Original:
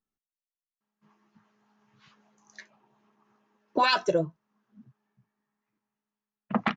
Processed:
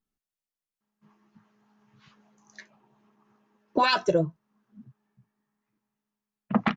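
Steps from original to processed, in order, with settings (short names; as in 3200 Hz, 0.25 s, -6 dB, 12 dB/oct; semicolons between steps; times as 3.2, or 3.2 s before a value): low shelf 280 Hz +6.5 dB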